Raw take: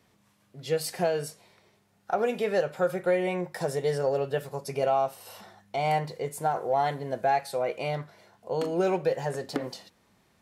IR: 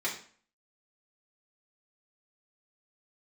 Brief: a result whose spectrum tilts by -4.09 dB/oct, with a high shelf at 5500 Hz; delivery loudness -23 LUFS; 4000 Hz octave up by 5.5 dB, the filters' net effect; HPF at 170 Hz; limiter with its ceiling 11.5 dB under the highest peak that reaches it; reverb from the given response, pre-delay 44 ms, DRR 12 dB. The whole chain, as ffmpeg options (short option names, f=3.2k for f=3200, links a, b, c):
-filter_complex "[0:a]highpass=170,equalizer=f=4k:t=o:g=8.5,highshelf=f=5.5k:g=-3.5,alimiter=level_in=2dB:limit=-24dB:level=0:latency=1,volume=-2dB,asplit=2[a][b];[1:a]atrim=start_sample=2205,adelay=44[c];[b][c]afir=irnorm=-1:irlink=0,volume=-18.5dB[d];[a][d]amix=inputs=2:normalize=0,volume=12.5dB"